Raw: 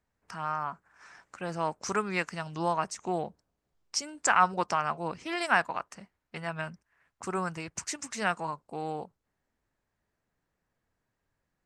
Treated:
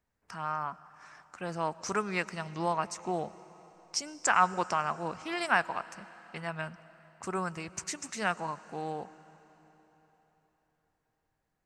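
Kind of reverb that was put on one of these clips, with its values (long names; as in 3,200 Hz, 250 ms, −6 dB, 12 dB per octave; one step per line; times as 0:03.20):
comb and all-pass reverb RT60 4.1 s, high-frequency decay 0.95×, pre-delay 65 ms, DRR 17.5 dB
level −1.5 dB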